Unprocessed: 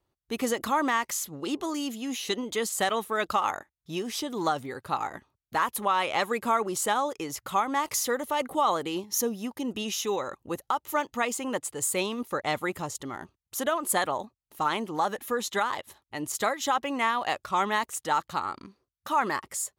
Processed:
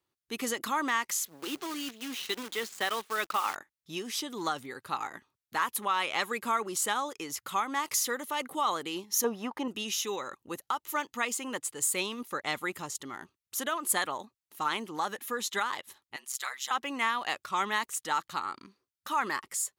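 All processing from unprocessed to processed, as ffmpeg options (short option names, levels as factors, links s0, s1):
-filter_complex "[0:a]asettb=1/sr,asplit=3[s0][s1][s2];[s0]atrim=end=1.254[s3];[s1]atrim=start=1.25:end=3.56,asetpts=PTS-STARTPTS,afade=t=in:d=0.004:c=qsin,afade=t=out:st=2.306:d=0.004:c=qsin,highpass=240,lowpass=4200,acrusher=bits=7:dc=4:mix=0:aa=0.000001[s4];[s2]atrim=start=3.556[s5];[s3][s4]acrossfade=d=0.004:c1=hsin:c2=qsin[s6];[s6][s5]acrossfade=d=0.004:c1=qsin:c2=hsin,asettb=1/sr,asplit=3[s7][s8][s9];[s7]atrim=end=9.244[s10];[s8]atrim=start=9.24:end=9.68,asetpts=PTS-STARTPTS,afade=t=in:d=0.004:c=qsin,afade=t=out:st=0.436:d=0.004:c=qsin,lowpass=f=3000:p=1,equalizer=f=910:w=0.63:g=14[s11];[s9]atrim=start=9.676[s12];[s10][s11]acrossfade=d=0.004:c1=hsin:c2=qsin[s13];[s13][s12]acrossfade=d=0.004:c1=qsin:c2=hsin,asettb=1/sr,asplit=3[s14][s15][s16];[s14]atrim=end=16.164[s17];[s15]atrim=start=16.16:end=16.71,asetpts=PTS-STARTPTS,afade=t=in:d=0.004:c=qsin,afade=t=out:st=0.546:d=0.004:c=qsin,highpass=1200,aeval=exprs='val(0)*sin(2*PI*66*n/s)':c=same[s18];[s16]atrim=start=16.706[s19];[s17][s18]acrossfade=d=0.004:c1=hsin:c2=qsin[s20];[s20][s19]acrossfade=d=0.004:c1=qsin:c2=hsin,highpass=f=360:p=1,equalizer=f=640:t=o:w=1.2:g=-8"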